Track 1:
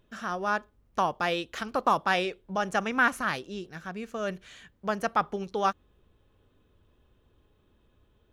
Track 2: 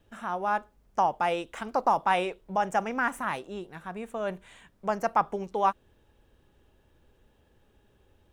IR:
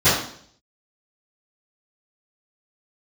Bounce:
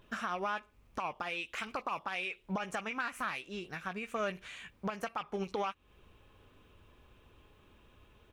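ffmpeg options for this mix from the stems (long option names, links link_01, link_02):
-filter_complex "[0:a]alimiter=limit=-21.5dB:level=0:latency=1:release=409,equalizer=frequency=1100:width_type=o:width=1.3:gain=6.5,volume=2.5dB[link_01];[1:a]acompressor=threshold=-31dB:ratio=4,asoftclip=type=tanh:threshold=-29.5dB,highpass=frequency=2400:width_type=q:width=4.6,adelay=16,volume=-3dB,asplit=2[link_02][link_03];[link_03]apad=whole_len=367339[link_04];[link_01][link_04]sidechaincompress=threshold=-53dB:ratio=3:attack=6.3:release=211[link_05];[link_05][link_02]amix=inputs=2:normalize=0,alimiter=level_in=1dB:limit=-24dB:level=0:latency=1:release=58,volume=-1dB"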